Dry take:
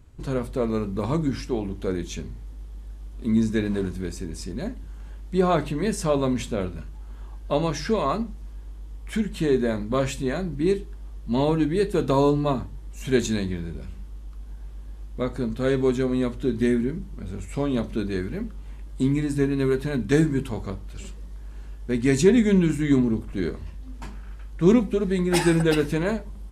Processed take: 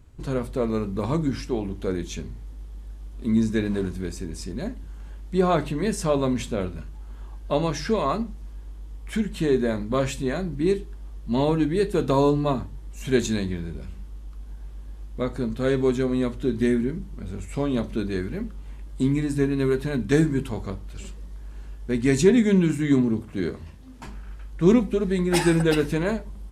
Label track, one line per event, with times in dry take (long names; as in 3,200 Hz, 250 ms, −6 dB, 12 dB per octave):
22.310000	24.070000	high-pass filter 66 Hz 24 dB per octave